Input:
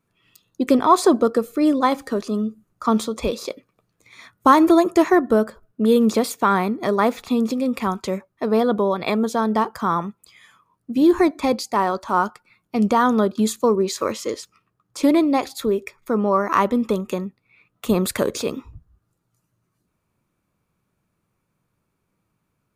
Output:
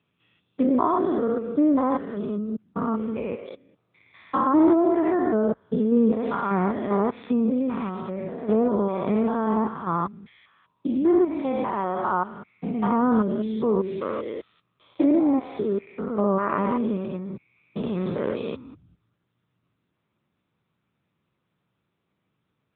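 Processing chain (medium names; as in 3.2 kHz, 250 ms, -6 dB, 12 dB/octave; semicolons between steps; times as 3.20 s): spectrogram pixelated in time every 200 ms; 2.38–3.46 s: steep low-pass 2.9 kHz 72 dB/octave; low-pass that closes with the level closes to 1.6 kHz, closed at -17 dBFS; AMR-NB 10.2 kbps 8 kHz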